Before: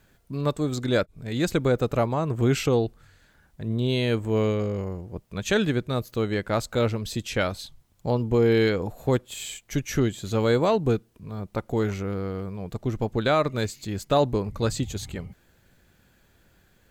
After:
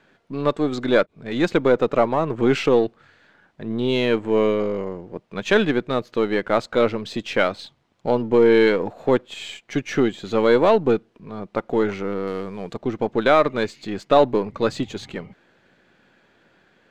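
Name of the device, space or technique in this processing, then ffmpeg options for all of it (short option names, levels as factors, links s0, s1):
crystal radio: -filter_complex "[0:a]highpass=230,lowpass=3300,aeval=exprs='if(lt(val(0),0),0.708*val(0),val(0))':c=same,asettb=1/sr,asplit=3[s0][s1][s2];[s0]atrim=end=12.274[s3];[s1]atrim=start=12.27:end=12.74,asetpts=PTS-STARTPTS,afade=t=in:d=0.004:c=qsin,afade=t=out:st=0.466:d=0.004:c=qsin,equalizer=f=9000:w=0.4:g=11[s4];[s2]atrim=start=12.736[s5];[s3][s4]acrossfade=d=0.004:c1=hsin:c2=qsin[s6];[s6][s5]acrossfade=d=0.004:c1=qsin:c2=hsin,volume=2.51"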